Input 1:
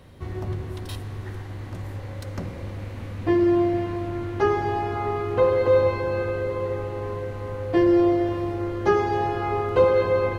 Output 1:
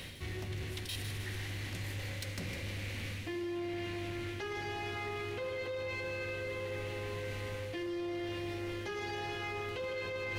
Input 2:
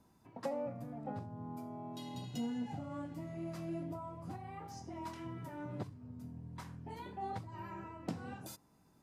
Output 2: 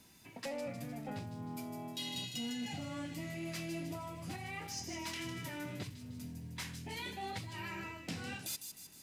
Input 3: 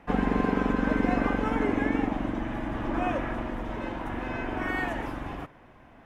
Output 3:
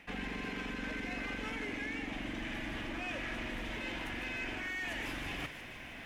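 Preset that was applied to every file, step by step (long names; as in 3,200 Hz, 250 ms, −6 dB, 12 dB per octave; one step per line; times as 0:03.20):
high shelf with overshoot 1,600 Hz +12 dB, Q 1.5
mains-hum notches 60/120 Hz
brickwall limiter −17 dBFS
reversed playback
downward compressor 6 to 1, threshold −39 dBFS
reversed playback
soft clipping −34.5 dBFS
on a send: delay with a high-pass on its return 154 ms, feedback 52%, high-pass 4,400 Hz, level −5.5 dB
on the sum: level +3 dB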